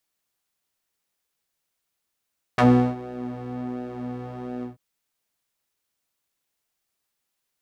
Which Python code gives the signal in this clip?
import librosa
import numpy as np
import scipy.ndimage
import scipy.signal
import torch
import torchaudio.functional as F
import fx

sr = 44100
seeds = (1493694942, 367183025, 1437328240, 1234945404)

y = fx.sub_patch_pwm(sr, seeds[0], note=47, wave2='square', interval_st=12, detune_cents=16, level2_db=-4, sub_db=-15.0, noise_db=-30.0, kind='bandpass', cutoff_hz=210.0, q=0.87, env_oct=3.0, env_decay_s=0.06, env_sustain_pct=30, attack_ms=2.0, decay_s=0.37, sustain_db=-20, release_s=0.14, note_s=2.05, lfo_hz=1.4, width_pct=26, width_swing_pct=15)